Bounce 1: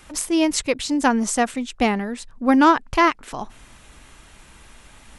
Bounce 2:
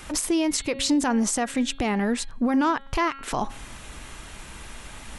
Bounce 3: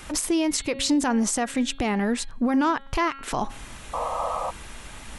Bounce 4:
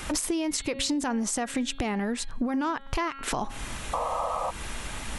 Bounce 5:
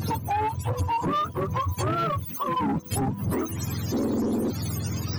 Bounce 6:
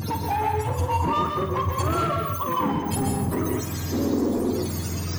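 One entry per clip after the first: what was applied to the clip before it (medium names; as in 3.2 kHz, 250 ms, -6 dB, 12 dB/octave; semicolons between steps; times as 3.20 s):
de-hum 273.1 Hz, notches 16; compression 6:1, threshold -24 dBFS, peak gain reduction 13 dB; peak limiter -21.5 dBFS, peak gain reduction 8.5 dB; trim +6.5 dB
painted sound noise, 3.93–4.51 s, 470–1300 Hz -28 dBFS
compression, threshold -31 dBFS, peak gain reduction 12 dB; trim +5 dB
spectrum inverted on a logarithmic axis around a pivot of 520 Hz; waveshaping leveller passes 2; saturation -19 dBFS, distortion -22 dB
on a send: flutter echo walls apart 8.5 m, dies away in 0.3 s; on the sum: plate-style reverb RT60 0.67 s, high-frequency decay 0.95×, pre-delay 115 ms, DRR 1.5 dB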